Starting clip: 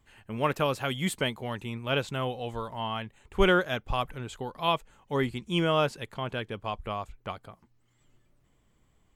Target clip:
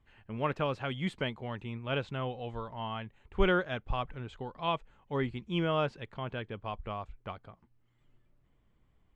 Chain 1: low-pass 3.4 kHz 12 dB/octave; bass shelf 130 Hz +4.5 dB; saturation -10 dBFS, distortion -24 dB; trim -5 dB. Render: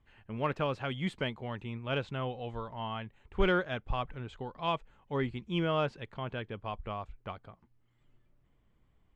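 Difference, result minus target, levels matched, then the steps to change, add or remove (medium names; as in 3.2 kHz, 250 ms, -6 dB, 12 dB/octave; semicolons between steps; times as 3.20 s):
saturation: distortion +16 dB
change: saturation -1 dBFS, distortion -40 dB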